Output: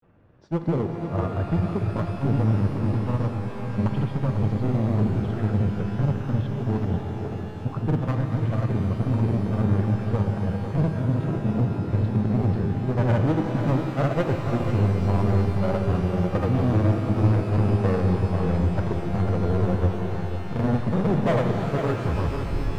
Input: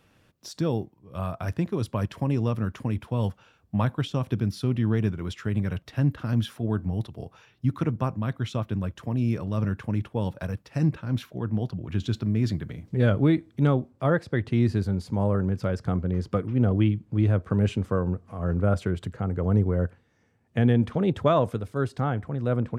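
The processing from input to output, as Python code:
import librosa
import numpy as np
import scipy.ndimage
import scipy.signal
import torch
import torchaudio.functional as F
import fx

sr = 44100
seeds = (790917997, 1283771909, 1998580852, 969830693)

p1 = fx.tape_stop_end(x, sr, length_s=0.88)
p2 = scipy.signal.sosfilt(scipy.signal.butter(2, 1100.0, 'lowpass', fs=sr, output='sos'), p1)
p3 = np.clip(p2, -10.0 ** (-23.5 / 20.0), 10.0 ** (-23.5 / 20.0))
p4 = fx.granulator(p3, sr, seeds[0], grain_ms=100.0, per_s=20.0, spray_ms=100.0, spread_st=0)
p5 = p4 + fx.echo_single(p4, sr, ms=494, db=-9.0, dry=0)
p6 = fx.rev_shimmer(p5, sr, seeds[1], rt60_s=3.9, semitones=12, shimmer_db=-8, drr_db=5.0)
y = p6 * librosa.db_to_amplitude(5.5)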